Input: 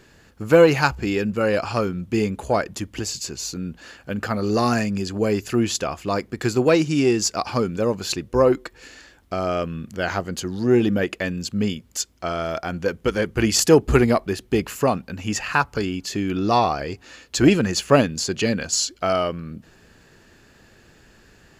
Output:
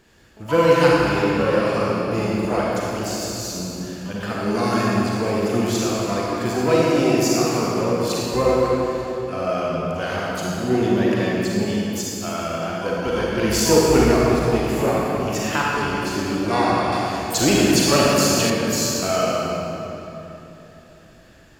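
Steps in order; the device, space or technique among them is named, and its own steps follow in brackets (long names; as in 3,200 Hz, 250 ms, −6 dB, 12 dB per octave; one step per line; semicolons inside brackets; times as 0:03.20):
shimmer-style reverb (pitch-shifted copies added +12 semitones −11 dB; convolution reverb RT60 3.2 s, pre-delay 34 ms, DRR −5.5 dB)
0:16.92–0:18.50: high-shelf EQ 3,200 Hz +9 dB
level −5.5 dB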